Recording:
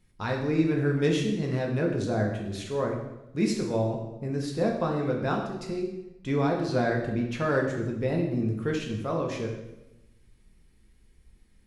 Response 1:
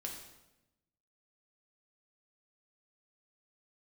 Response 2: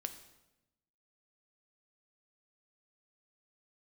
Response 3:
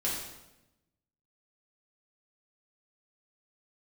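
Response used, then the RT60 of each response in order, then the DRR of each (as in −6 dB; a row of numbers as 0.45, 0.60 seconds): 1; 0.95, 0.95, 0.95 seconds; 0.0, 7.5, −6.5 decibels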